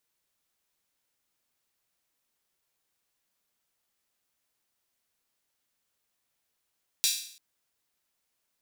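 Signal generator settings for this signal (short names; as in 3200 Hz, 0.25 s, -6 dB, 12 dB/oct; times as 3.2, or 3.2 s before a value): open hi-hat length 0.34 s, high-pass 3800 Hz, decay 0.58 s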